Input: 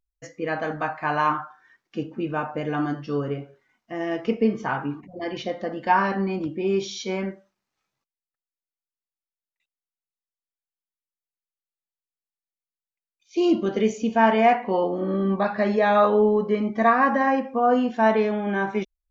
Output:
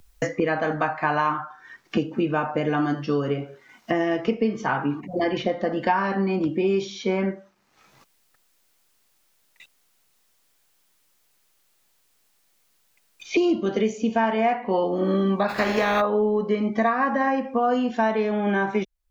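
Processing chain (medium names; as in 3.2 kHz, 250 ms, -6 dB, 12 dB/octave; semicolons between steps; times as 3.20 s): 15.48–16.00 s: spectral contrast reduction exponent 0.48; three bands compressed up and down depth 100%; trim -1 dB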